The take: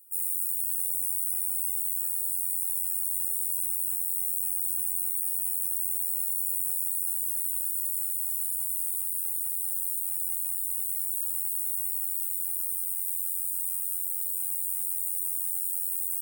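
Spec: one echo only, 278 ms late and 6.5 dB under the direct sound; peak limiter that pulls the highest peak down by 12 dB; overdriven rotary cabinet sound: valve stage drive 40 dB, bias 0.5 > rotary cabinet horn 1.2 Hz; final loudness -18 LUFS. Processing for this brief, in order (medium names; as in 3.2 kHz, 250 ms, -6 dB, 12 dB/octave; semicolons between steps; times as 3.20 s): peak limiter -27.5 dBFS; delay 278 ms -6.5 dB; valve stage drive 40 dB, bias 0.5; rotary cabinet horn 1.2 Hz; trim +26.5 dB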